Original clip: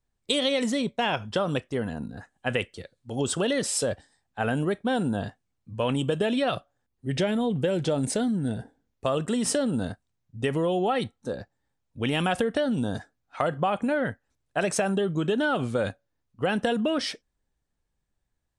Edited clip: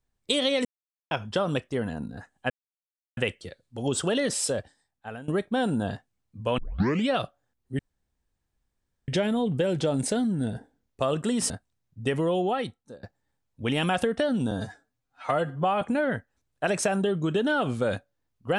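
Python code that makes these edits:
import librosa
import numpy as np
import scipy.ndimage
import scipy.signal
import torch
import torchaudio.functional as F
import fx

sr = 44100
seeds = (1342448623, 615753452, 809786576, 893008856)

y = fx.edit(x, sr, fx.silence(start_s=0.65, length_s=0.46),
    fx.insert_silence(at_s=2.5, length_s=0.67),
    fx.fade_out_to(start_s=3.7, length_s=0.91, floor_db=-18.5),
    fx.tape_start(start_s=5.91, length_s=0.5),
    fx.insert_room_tone(at_s=7.12, length_s=1.29),
    fx.cut(start_s=9.54, length_s=0.33),
    fx.fade_out_to(start_s=10.76, length_s=0.64, floor_db=-21.5),
    fx.stretch_span(start_s=12.88, length_s=0.87, factor=1.5), tone=tone)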